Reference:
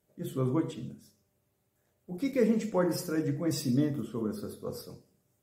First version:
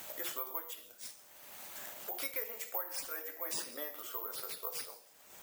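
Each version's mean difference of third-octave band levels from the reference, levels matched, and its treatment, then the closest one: 17.0 dB: high-pass 680 Hz 24 dB/octave; careless resampling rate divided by 3×, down none, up zero stuff; three bands compressed up and down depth 100%; trim -1.5 dB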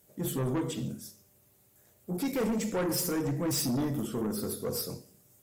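7.0 dB: in parallel at +3 dB: compression, threshold -35 dBFS, peak gain reduction 13.5 dB; on the sum: treble shelf 5.6 kHz +11 dB; saturation -26 dBFS, distortion -9 dB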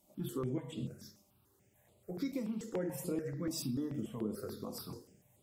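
5.5 dB: bass shelf 200 Hz -3 dB; compression 4:1, threshold -43 dBFS, peak gain reduction 18 dB; stepped phaser 6.9 Hz 440–5800 Hz; trim +8.5 dB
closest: third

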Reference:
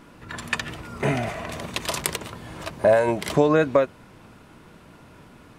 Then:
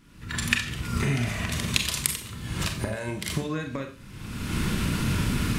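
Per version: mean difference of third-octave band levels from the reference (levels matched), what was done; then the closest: 10.5 dB: recorder AGC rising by 38 dB/s; amplifier tone stack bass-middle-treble 6-0-2; in parallel at -10 dB: saturation -21 dBFS, distortion -15 dB; on the sum: Schroeder reverb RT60 0.39 s, combs from 29 ms, DRR 4.5 dB; trim +7 dB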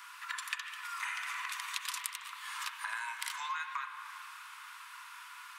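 20.0 dB: steep high-pass 980 Hz 72 dB/octave; treble shelf 7.9 kHz +4.5 dB; compression 5:1, threshold -42 dBFS, peak gain reduction 22 dB; spring tank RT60 3.5 s, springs 36/54/58 ms, chirp 75 ms, DRR 4.5 dB; trim +4.5 dB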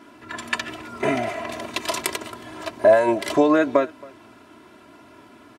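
3.5 dB: high-pass 150 Hz 12 dB/octave; treble shelf 7.4 kHz -5 dB; comb 3 ms, depth 78%; delay 273 ms -23.5 dB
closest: third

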